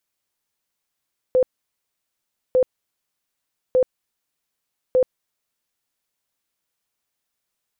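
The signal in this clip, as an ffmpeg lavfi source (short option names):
-f lavfi -i "aevalsrc='0.237*sin(2*PI*510*mod(t,1.2))*lt(mod(t,1.2),40/510)':d=4.8:s=44100"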